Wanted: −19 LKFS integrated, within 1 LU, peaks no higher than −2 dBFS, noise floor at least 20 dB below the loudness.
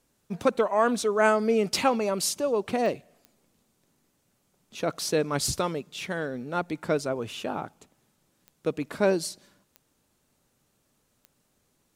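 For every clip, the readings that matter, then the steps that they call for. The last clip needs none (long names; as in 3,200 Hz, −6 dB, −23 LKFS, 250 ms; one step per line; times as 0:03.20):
number of clicks 6; integrated loudness −27.0 LKFS; sample peak −8.5 dBFS; target loudness −19.0 LKFS
→ click removal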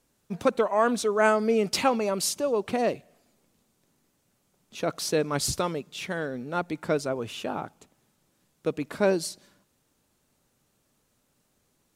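number of clicks 0; integrated loudness −27.0 LKFS; sample peak −8.5 dBFS; target loudness −19.0 LKFS
→ level +8 dB
brickwall limiter −2 dBFS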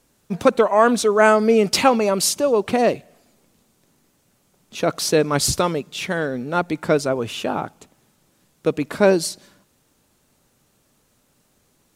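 integrated loudness −19.0 LKFS; sample peak −2.0 dBFS; background noise floor −64 dBFS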